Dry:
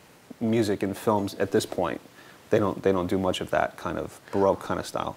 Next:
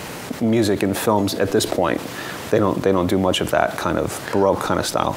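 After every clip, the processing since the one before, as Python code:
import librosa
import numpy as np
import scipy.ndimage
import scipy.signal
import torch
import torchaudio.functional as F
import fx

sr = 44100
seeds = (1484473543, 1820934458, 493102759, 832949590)

y = fx.env_flatten(x, sr, amount_pct=50)
y = F.gain(torch.from_numpy(y), 3.5).numpy()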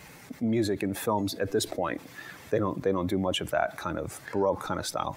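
y = fx.bin_expand(x, sr, power=1.5)
y = F.gain(torch.from_numpy(y), -7.0).numpy()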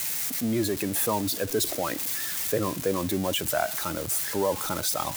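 y = x + 0.5 * 10.0 ** (-22.0 / 20.0) * np.diff(np.sign(x), prepend=np.sign(x[:1]))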